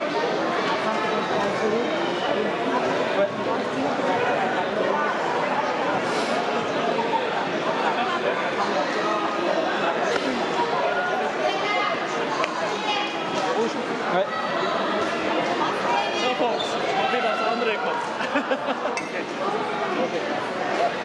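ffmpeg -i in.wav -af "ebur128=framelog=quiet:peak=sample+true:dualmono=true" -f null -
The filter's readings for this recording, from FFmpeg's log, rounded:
Integrated loudness:
  I:         -20.7 LUFS
  Threshold: -30.7 LUFS
Loudness range:
  LRA:         1.1 LU
  Threshold: -40.6 LUFS
  LRA low:   -21.3 LUFS
  LRA high:  -20.2 LUFS
Sample peak:
  Peak:       -5.7 dBFS
True peak:
  Peak:       -5.7 dBFS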